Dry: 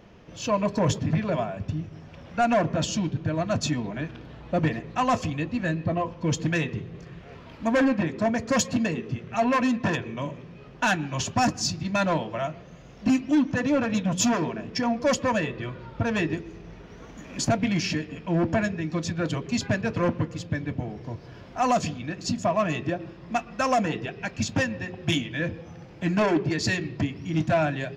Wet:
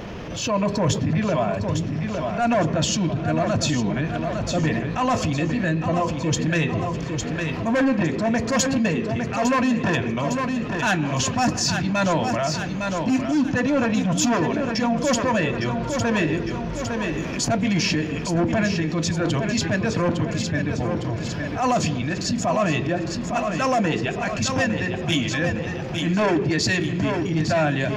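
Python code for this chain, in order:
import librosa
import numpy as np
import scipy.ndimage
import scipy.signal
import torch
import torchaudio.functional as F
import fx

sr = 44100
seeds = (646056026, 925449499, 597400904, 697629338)

y = fx.transient(x, sr, attack_db=-8, sustain_db=0)
y = fx.echo_feedback(y, sr, ms=857, feedback_pct=43, wet_db=-9.5)
y = fx.env_flatten(y, sr, amount_pct=50)
y = F.gain(torch.from_numpy(y), 2.0).numpy()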